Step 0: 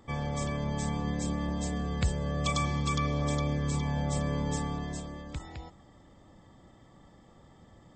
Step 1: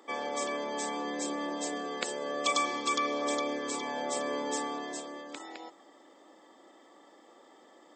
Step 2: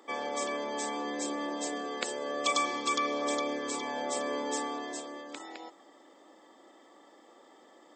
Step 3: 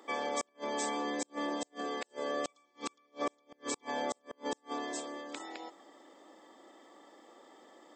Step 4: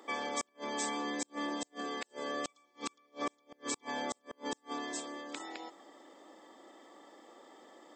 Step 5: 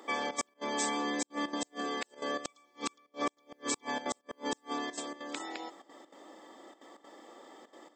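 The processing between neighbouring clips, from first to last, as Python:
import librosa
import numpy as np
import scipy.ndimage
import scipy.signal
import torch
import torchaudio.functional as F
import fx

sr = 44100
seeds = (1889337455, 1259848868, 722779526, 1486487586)

y1 = scipy.signal.sosfilt(scipy.signal.butter(6, 290.0, 'highpass', fs=sr, output='sos'), x)
y1 = y1 * 10.0 ** (3.5 / 20.0)
y2 = fx.hum_notches(y1, sr, base_hz=60, count=3)
y3 = fx.gate_flip(y2, sr, shuts_db=-23.0, range_db=-39)
y4 = fx.dynamic_eq(y3, sr, hz=570.0, q=1.1, threshold_db=-47.0, ratio=4.0, max_db=-6)
y4 = y4 * 10.0 ** (1.0 / 20.0)
y5 = fx.step_gate(y4, sr, bpm=196, pattern='xxxx.xx.xxxx', floor_db=-12.0, edge_ms=4.5)
y5 = y5 * 10.0 ** (3.5 / 20.0)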